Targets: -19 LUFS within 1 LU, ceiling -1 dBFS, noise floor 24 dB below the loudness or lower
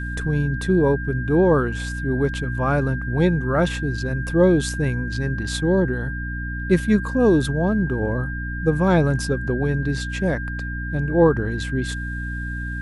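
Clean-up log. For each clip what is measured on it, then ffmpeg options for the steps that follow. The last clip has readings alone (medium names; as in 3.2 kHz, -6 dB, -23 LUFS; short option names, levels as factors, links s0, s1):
hum 60 Hz; highest harmonic 300 Hz; hum level -26 dBFS; steady tone 1.6 kHz; tone level -31 dBFS; loudness -21.5 LUFS; peak level -5.0 dBFS; loudness target -19.0 LUFS
-> -af "bandreject=f=60:t=h:w=4,bandreject=f=120:t=h:w=4,bandreject=f=180:t=h:w=4,bandreject=f=240:t=h:w=4,bandreject=f=300:t=h:w=4"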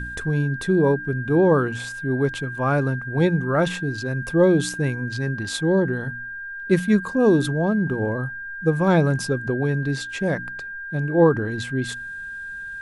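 hum not found; steady tone 1.6 kHz; tone level -31 dBFS
-> -af "bandreject=f=1600:w=30"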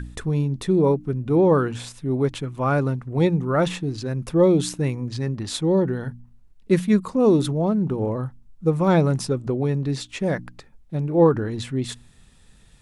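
steady tone not found; loudness -22.0 LUFS; peak level -5.5 dBFS; loudness target -19.0 LUFS
-> -af "volume=1.41"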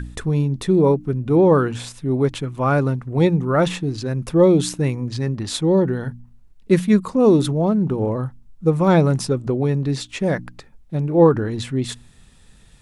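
loudness -19.5 LUFS; peak level -2.5 dBFS; noise floor -49 dBFS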